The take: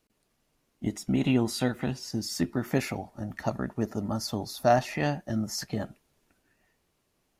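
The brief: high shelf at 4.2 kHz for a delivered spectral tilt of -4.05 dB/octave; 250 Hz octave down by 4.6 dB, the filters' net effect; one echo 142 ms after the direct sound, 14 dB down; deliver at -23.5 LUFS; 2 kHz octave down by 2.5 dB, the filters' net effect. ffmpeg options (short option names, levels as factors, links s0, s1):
-af "equalizer=f=250:t=o:g=-5.5,equalizer=f=2000:t=o:g=-5,highshelf=f=4200:g=8.5,aecho=1:1:142:0.2,volume=2.24"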